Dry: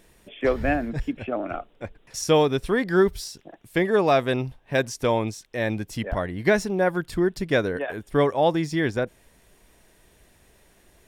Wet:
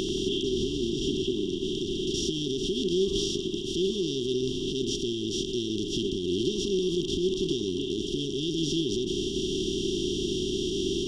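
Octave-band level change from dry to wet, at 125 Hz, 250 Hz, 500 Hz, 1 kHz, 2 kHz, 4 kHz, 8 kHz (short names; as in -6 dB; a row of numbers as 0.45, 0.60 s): -5.5 dB, -1.0 dB, -5.0 dB, under -35 dB, -18.5 dB, +7.5 dB, +2.5 dB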